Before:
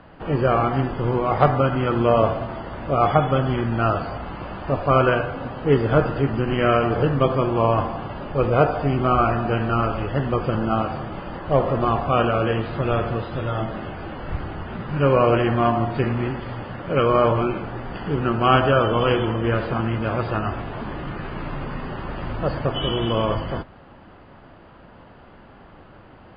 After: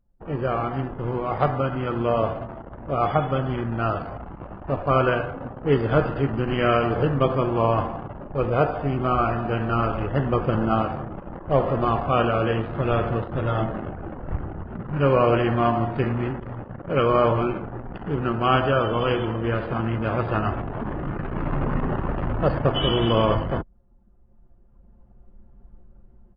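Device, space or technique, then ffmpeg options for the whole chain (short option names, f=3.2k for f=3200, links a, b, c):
voice memo with heavy noise removal: -filter_complex "[0:a]asettb=1/sr,asplit=3[a][b][c];[a]atrim=end=5.674[d];[b]atrim=start=5.67:end=6.92,asetpts=PTS-STARTPTS,afade=t=in:d=0.004:c=qsin,afade=t=out:st=1.246:d=0.004:c=qsin,highshelf=f=3.5k:g=4.5[e];[c]atrim=start=6.916[f];[d][e]acrossfade=d=0.004:c1=hsin:c2=qsin[g];[g][f]acrossfade=d=0.004:c1=qsin:c2=hsin,anlmdn=39.8,dynaudnorm=f=560:g=3:m=16.5dB,volume=-6dB"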